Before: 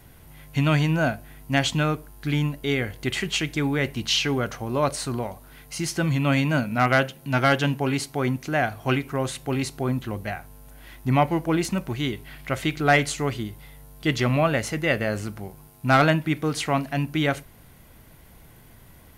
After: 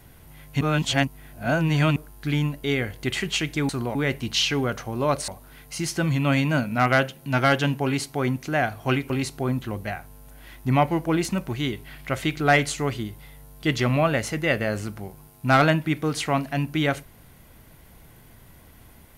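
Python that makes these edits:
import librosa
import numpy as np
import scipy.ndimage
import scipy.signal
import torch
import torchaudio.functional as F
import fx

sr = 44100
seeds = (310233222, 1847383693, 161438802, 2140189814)

y = fx.edit(x, sr, fx.reverse_span(start_s=0.61, length_s=1.35),
    fx.move(start_s=5.02, length_s=0.26, to_s=3.69),
    fx.cut(start_s=9.1, length_s=0.4), tone=tone)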